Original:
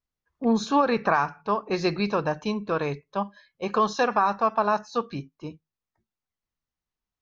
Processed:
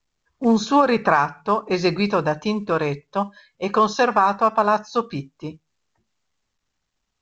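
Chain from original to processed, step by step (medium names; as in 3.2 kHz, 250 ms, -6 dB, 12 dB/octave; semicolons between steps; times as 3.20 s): trim +5 dB; µ-law 128 kbps 16 kHz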